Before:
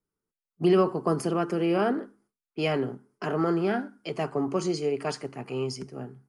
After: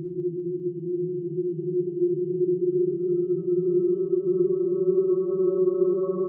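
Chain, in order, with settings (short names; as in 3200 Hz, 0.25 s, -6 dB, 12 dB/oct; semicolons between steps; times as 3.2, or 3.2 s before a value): spectral contrast raised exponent 2.6; de-hum 54.24 Hz, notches 9; Paulstretch 39×, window 0.25 s, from 0.6; feedback echo 0.2 s, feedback 57%, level -9 dB; on a send at -10 dB: reverb RT60 0.40 s, pre-delay 20 ms; on the sum: gain -3 dB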